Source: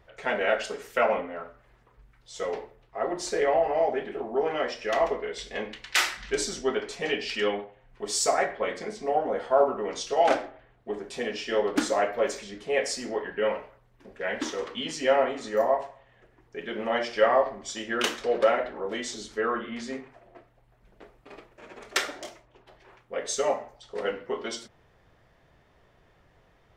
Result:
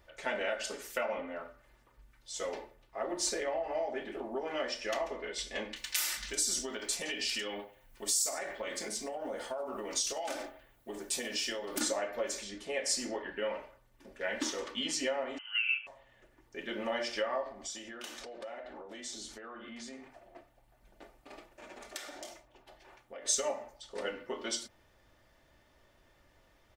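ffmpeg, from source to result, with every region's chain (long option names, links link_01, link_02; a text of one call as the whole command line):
ffmpeg -i in.wav -filter_complex "[0:a]asettb=1/sr,asplit=3[link_01][link_02][link_03];[link_01]atrim=end=5.764[link_04];[link_02]atrim=start=5.76:end=11.81,asetpts=PTS-STARTPTS,afade=type=in:duration=0.004:curve=qsin,afade=type=out:start_time=6.046:duration=0.004:curve=qsin,aemphasis=mode=production:type=50fm,acompressor=threshold=-29dB:ratio=10:attack=3.2:release=140:knee=1:detection=peak[link_05];[link_03]atrim=start=11.806[link_06];[link_04][link_05]acrossfade=duration=0.004:curve1=hsin:curve2=qsin[link_07];[link_07][link_06]acrossfade=duration=0.004:curve1=qsin:curve2=hsin,asettb=1/sr,asplit=3[link_08][link_09][link_10];[link_08]atrim=end=15.384[link_11];[link_09]atrim=start=15.38:end=15.87,asetpts=PTS-STARTPTS,afade=type=in:duration=0.004:curve=qsin,afade=type=out:start_time=0.486:duration=0.004:curve=qsin,agate=range=-6dB:threshold=-29dB:ratio=16:release=100:detection=peak,lowpass=frequency=2800:width_type=q:width=0.5098,lowpass=frequency=2800:width_type=q:width=0.6013,lowpass=frequency=2800:width_type=q:width=0.9,lowpass=frequency=2800:width_type=q:width=2.563,afreqshift=-3300,highpass=820[link_12];[link_10]atrim=start=15.866[link_13];[link_11][link_12]acrossfade=duration=0.004:curve1=hsin:curve2=qsin[link_14];[link_14][link_13]acrossfade=duration=0.004:curve1=qsin:curve2=hsin,asettb=1/sr,asplit=3[link_15][link_16][link_17];[link_15]atrim=end=17.524[link_18];[link_16]atrim=start=17.52:end=23.26,asetpts=PTS-STARTPTS,afade=type=in:duration=0.004:curve=qsin,afade=type=out:start_time=5.736:duration=0.004:curve=qsin,acompressor=threshold=-40dB:ratio=5:attack=3.2:release=140:knee=1:detection=peak,equalizer=frequency=740:width=6.4:gain=8.5[link_19];[link_17]atrim=start=23.256[link_20];[link_18][link_19]acrossfade=duration=0.004:curve1=hsin:curve2=qsin[link_21];[link_21][link_20]acrossfade=duration=0.004:curve1=qsin:curve2=hsin,acompressor=threshold=-26dB:ratio=10,highshelf=frequency=4400:gain=11.5,aecho=1:1:3.4:0.43,volume=-5.5dB" out.wav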